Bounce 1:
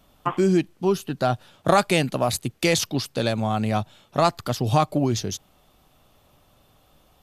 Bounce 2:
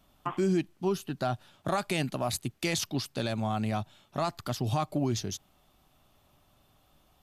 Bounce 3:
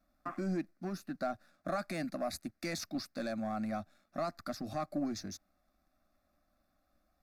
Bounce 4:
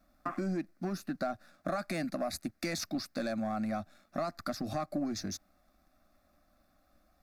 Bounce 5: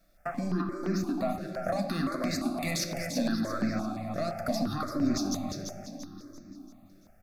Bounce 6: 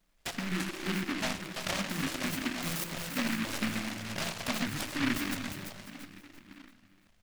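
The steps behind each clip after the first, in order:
peaking EQ 490 Hz -8 dB 0.23 oct; peak limiter -13 dBFS, peak gain reduction 7 dB; trim -6 dB
resonant high shelf 6 kHz -7 dB, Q 1.5; waveshaping leveller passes 1; static phaser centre 620 Hz, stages 8; trim -6 dB
compression 2.5:1, threshold -40 dBFS, peak gain reduction 6.5 dB; trim +7 dB
feedback delay 340 ms, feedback 43%, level -6.5 dB; on a send at -4.5 dB: reverberation RT60 2.9 s, pre-delay 4 ms; on the sum: stepped phaser 5.8 Hz 250–3200 Hz; trim +5.5 dB
in parallel at -4.5 dB: crossover distortion -47 dBFS; on the sum: delay time shaken by noise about 1.8 kHz, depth 0.36 ms; trim -7 dB

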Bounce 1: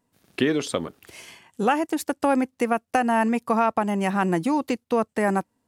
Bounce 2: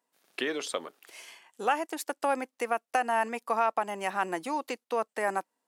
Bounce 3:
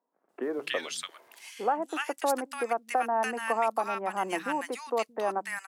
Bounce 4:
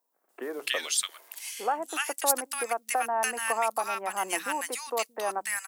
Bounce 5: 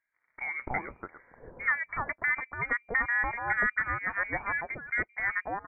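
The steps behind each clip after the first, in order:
high-pass 510 Hz 12 dB/octave; trim -4 dB
three bands offset in time mids, lows, highs 170/290 ms, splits 160/1300 Hz; trim +1.5 dB
RIAA curve recording
frequency inversion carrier 2.6 kHz

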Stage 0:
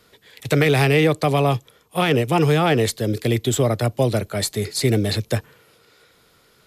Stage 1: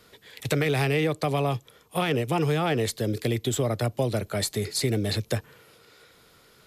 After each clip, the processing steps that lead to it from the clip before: compression 2:1, threshold -27 dBFS, peak gain reduction 8.5 dB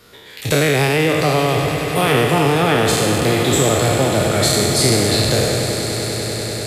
spectral sustain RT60 1.86 s; echo with a slow build-up 98 ms, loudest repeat 8, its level -15.5 dB; trim +6 dB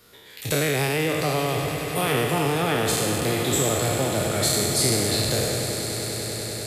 treble shelf 8.6 kHz +9 dB; trim -8 dB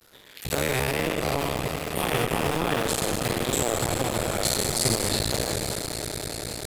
cycle switcher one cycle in 2, muted

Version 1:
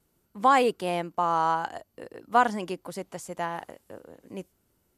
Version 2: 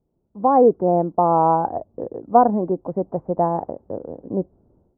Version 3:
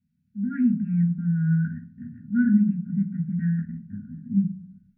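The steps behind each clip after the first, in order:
inverse Chebyshev low-pass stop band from 3.5 kHz, stop band 70 dB; level rider gain up to 15 dB
brick-wall FIR band-stop 250–1400 Hz; reverberation RT60 0.50 s, pre-delay 3 ms, DRR -2.5 dB; trim -5 dB

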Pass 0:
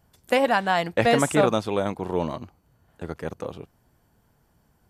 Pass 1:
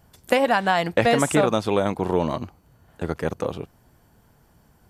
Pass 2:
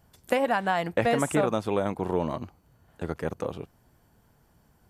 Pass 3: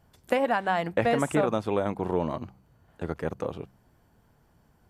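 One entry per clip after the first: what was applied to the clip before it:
compression 3:1, threshold -23 dBFS, peak gain reduction 7.5 dB; trim +6.5 dB
dynamic bell 4.5 kHz, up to -6 dB, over -44 dBFS, Q 1; trim -5 dB
treble shelf 5.2 kHz -6.5 dB; de-hum 64.66 Hz, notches 3

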